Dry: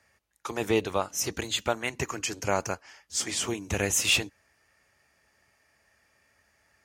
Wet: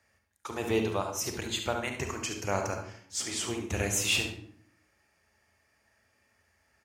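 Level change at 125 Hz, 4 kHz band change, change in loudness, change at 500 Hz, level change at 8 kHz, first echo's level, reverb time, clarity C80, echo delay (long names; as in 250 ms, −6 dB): 0.0 dB, −3.5 dB, −3.0 dB, −2.5 dB, −3.5 dB, −10.0 dB, 0.60 s, 10.0 dB, 71 ms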